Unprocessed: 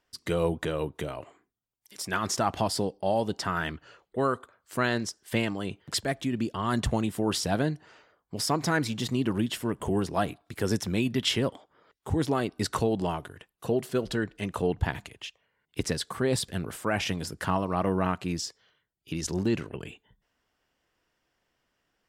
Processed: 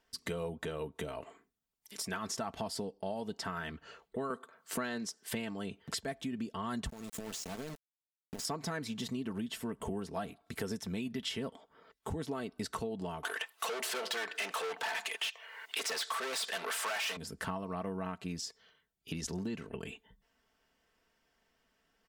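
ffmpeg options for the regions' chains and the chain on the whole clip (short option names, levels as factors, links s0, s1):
-filter_complex "[0:a]asettb=1/sr,asplit=3[s0][s1][s2];[s0]atrim=end=4.304[s3];[s1]atrim=start=4.3:end=5.33,asetpts=PTS-STARTPTS,afade=t=in:d=0.004:c=qsin,afade=t=out:st=1.026:d=0.004:c=qsin,highpass=f=130:w=0.5412,highpass=f=130:w=1.3066,acontrast=50[s4];[s2]atrim=start=5.326[s5];[s3][s4]acrossfade=d=0.004:c1=hsin:c2=qsin[s6];[s6][s5]acrossfade=d=0.004:c1=qsin:c2=hsin,asettb=1/sr,asplit=3[s7][s8][s9];[s7]atrim=end=6.894[s10];[s8]atrim=start=6.89:end=8.45,asetpts=PTS-STARTPTS,afade=t=in:d=0.004:c=qsin,afade=t=out:st=1.556:d=0.004:c=qsin,equalizer=f=6800:w=2.5:g=13.5,acompressor=threshold=0.0158:ratio=10:attack=3.2:release=140:knee=1:detection=peak,aeval=exprs='val(0)*gte(abs(val(0)),0.0106)':c=same[s11];[s9]atrim=start=8.446[s12];[s10][s11]acrossfade=d=0.004:c1=hsin:c2=qsin[s13];[s13][s12]acrossfade=d=0.004:c1=qsin:c2=hsin,asettb=1/sr,asplit=3[s14][s15][s16];[s14]atrim=end=13.234[s17];[s15]atrim=start=13.23:end=17.17,asetpts=PTS-STARTPTS,afade=t=in:d=0.004:c=qsin,afade=t=out:st=3.936:d=0.004:c=qsin,asplit=2[s18][s19];[s19]highpass=f=720:p=1,volume=63.1,asoftclip=type=tanh:threshold=0.251[s20];[s18][s20]amix=inputs=2:normalize=0,lowpass=f=5400:p=1,volume=0.501,highpass=620[s21];[s16]atrim=start=17.166[s22];[s17][s21]acrossfade=d=0.004:c1=hsin:c2=qsin[s23];[s23][s22]acrossfade=d=0.004:c1=qsin:c2=hsin,aecho=1:1:4.5:0.48,acompressor=threshold=0.0141:ratio=4"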